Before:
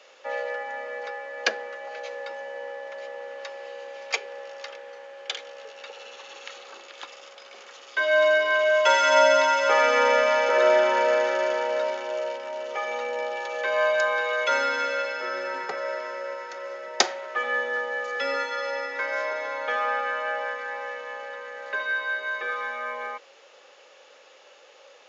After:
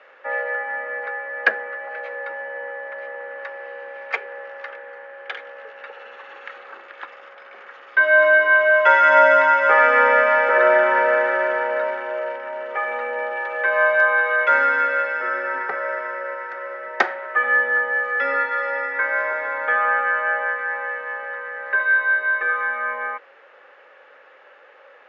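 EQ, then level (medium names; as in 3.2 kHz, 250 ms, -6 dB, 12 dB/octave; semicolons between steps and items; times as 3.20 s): resonant low-pass 1.7 kHz, resonance Q 2.7; hum notches 60/120/180 Hz; +1.5 dB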